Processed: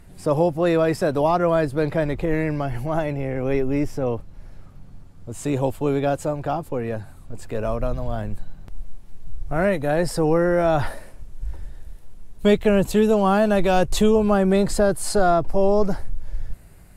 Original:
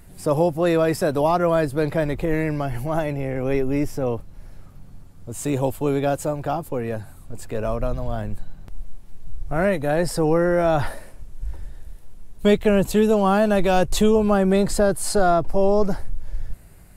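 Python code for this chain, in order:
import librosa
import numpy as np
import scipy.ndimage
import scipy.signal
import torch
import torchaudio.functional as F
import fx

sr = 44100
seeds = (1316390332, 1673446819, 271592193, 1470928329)

y = fx.high_shelf(x, sr, hz=9800.0, db=fx.steps((0.0, -11.5), (7.44, -4.0)))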